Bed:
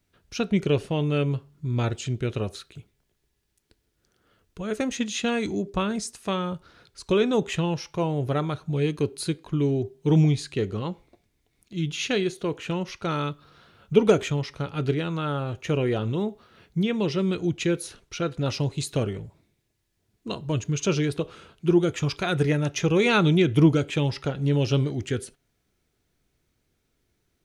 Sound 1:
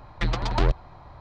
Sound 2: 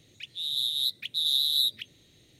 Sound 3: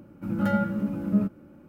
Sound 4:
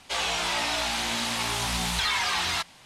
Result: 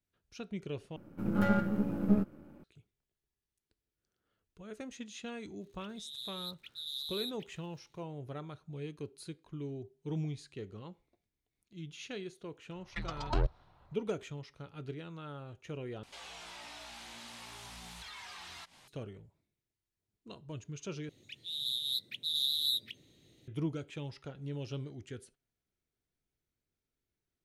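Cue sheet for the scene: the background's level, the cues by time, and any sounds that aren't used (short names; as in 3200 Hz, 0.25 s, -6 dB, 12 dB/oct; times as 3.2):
bed -17.5 dB
0.96 replace with 3 -1.5 dB + half-wave gain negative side -7 dB
5.61 add 2 -15.5 dB + crackle 120/s -42 dBFS
12.75 add 1 -8.5 dB + spectral noise reduction 9 dB
16.03 replace with 4 -7.5 dB + compressor 2.5:1, threshold -45 dBFS
21.09 replace with 2 -7 dB + bell 280 Hz +6 dB 2.6 oct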